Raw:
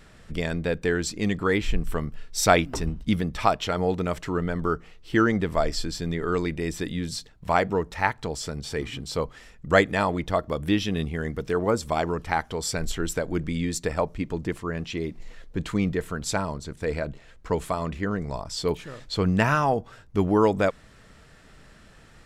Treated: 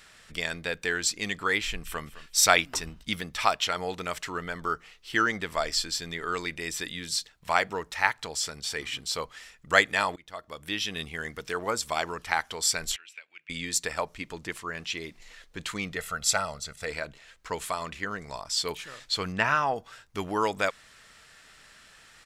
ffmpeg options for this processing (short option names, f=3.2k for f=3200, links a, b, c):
-filter_complex "[0:a]asplit=2[a][b];[b]afade=t=in:st=1.64:d=0.01,afade=t=out:st=2.05:d=0.01,aecho=0:1:210|420|630:0.149624|0.0448871|0.0134661[c];[a][c]amix=inputs=2:normalize=0,asettb=1/sr,asplit=3[d][e][f];[d]atrim=end=12.964[g];[e]atrim=start=12.96:end=13.5,asetpts=PTS-STARTPTS,afade=t=in:d=0.004:c=qsin,afade=t=out:st=0.536:d=0.004:c=qsin,bandpass=f=2.5k:t=q:w=7.3[h];[f]atrim=start=13.496[i];[g][h]acrossfade=d=0.004:c1=hsin:c2=qsin[j];[j][i]acrossfade=d=0.004:c1=qsin:c2=hsin,asettb=1/sr,asplit=3[k][l][m];[k]atrim=end=15.964[n];[l]atrim=start=15.96:end=16.87,asetpts=PTS-STARTPTS,afade=t=in:d=0.004:c=qsin,afade=t=out:st=0.906:d=0.004:c=qsin,aecho=1:1:1.5:0.65,atrim=end_sample=40131[o];[m]atrim=start=16.866[p];[n][o]acrossfade=d=0.004:c1=hsin:c2=qsin[q];[q][p]acrossfade=d=0.004:c1=qsin:c2=hsin,asettb=1/sr,asplit=3[r][s][t];[r]atrim=end=19.324[u];[s]atrim=start=19.32:end=19.76,asetpts=PTS-STARTPTS,afade=t=in:d=0.004:c=qsin,afade=t=out:st=0.436:d=0.004:c=qsin,aemphasis=mode=reproduction:type=75fm[v];[t]atrim=start=19.756[w];[u][v]acrossfade=d=0.004:c1=hsin:c2=qsin[x];[x][w]acrossfade=d=0.004:c1=qsin:c2=hsin,asplit=2[y][z];[y]atrim=end=10.16,asetpts=PTS-STARTPTS,afade=t=out:st=10.156:d=0.004:c=hsin:silence=0.0630957[aa];[z]atrim=start=10.16,asetpts=PTS-STARTPTS,afade=t=in:d=0.89:silence=0.0630957[ab];[aa][ab]concat=n=2:v=0:a=1,tiltshelf=f=750:g=-10,volume=-4.5dB"